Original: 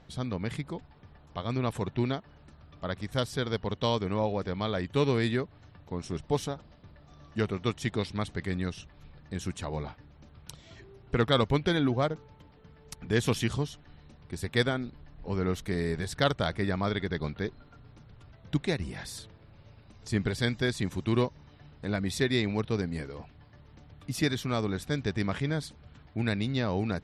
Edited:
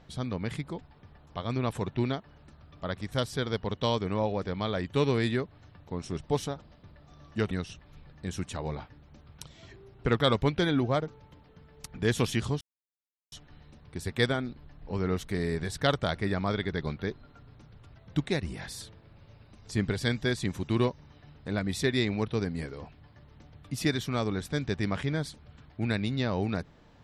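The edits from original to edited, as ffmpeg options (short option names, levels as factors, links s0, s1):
-filter_complex "[0:a]asplit=3[s0][s1][s2];[s0]atrim=end=7.512[s3];[s1]atrim=start=8.588:end=13.69,asetpts=PTS-STARTPTS,afade=t=out:st=5.098:d=0.004:c=hsin,apad=pad_dur=0.71[s4];[s2]atrim=start=13.69,asetpts=PTS-STARTPTS,afade=t=in:d=0.004:c=hsin[s5];[s4][s5]concat=n=2:v=0:a=1[s6];[s3][s6]acrossfade=d=0.004:c1=hsin:c2=hsin"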